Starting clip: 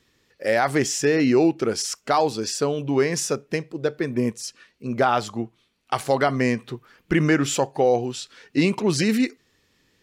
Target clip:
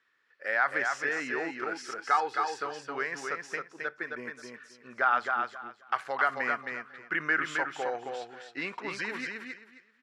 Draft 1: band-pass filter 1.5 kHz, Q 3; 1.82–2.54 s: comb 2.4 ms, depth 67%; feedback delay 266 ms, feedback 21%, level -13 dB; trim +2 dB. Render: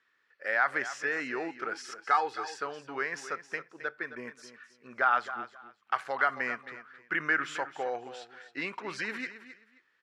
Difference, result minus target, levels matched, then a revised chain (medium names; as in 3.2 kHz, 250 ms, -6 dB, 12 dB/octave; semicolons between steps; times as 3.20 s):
echo-to-direct -8.5 dB
band-pass filter 1.5 kHz, Q 3; 1.82–2.54 s: comb 2.4 ms, depth 67%; feedback delay 266 ms, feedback 21%, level -4.5 dB; trim +2 dB